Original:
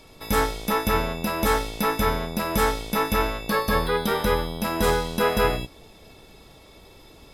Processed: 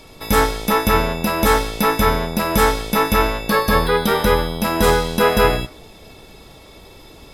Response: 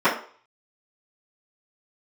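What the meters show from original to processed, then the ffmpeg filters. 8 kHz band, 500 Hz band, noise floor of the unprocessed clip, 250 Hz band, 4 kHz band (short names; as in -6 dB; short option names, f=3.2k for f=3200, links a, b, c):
+6.5 dB, +6.5 dB, -50 dBFS, +6.5 dB, +6.5 dB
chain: -filter_complex "[0:a]asplit=2[a][b];[1:a]atrim=start_sample=2205,asetrate=66150,aresample=44100,adelay=125[c];[b][c]afir=irnorm=-1:irlink=0,volume=-38dB[d];[a][d]amix=inputs=2:normalize=0,volume=6.5dB"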